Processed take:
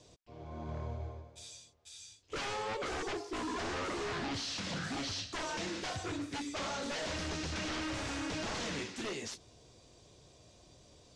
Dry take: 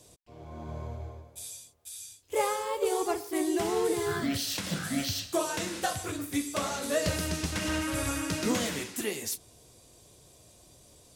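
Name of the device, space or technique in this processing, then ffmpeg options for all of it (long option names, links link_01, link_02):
synthesiser wavefolder: -af "aeval=exprs='0.0299*(abs(mod(val(0)/0.0299+3,4)-2)-1)':channel_layout=same,lowpass=frequency=6300:width=0.5412,lowpass=frequency=6300:width=1.3066,volume=-1.5dB"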